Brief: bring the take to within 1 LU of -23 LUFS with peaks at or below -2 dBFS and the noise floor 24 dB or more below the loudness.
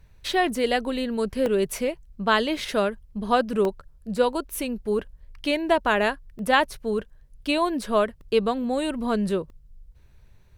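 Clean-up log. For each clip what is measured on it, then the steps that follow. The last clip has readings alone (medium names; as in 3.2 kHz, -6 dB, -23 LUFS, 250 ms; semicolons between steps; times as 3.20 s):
dropouts 6; longest dropout 1.3 ms; loudness -25.0 LUFS; peak level -5.5 dBFS; loudness target -23.0 LUFS
-> interpolate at 1.46/2.57/3.65/6.39/8.21/9.50 s, 1.3 ms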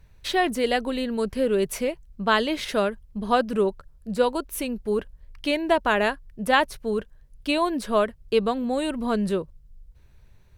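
dropouts 0; loudness -25.0 LUFS; peak level -5.5 dBFS; loudness target -23.0 LUFS
-> trim +2 dB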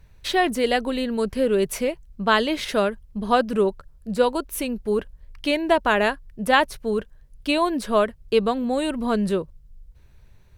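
loudness -23.0 LUFS; peak level -3.5 dBFS; noise floor -52 dBFS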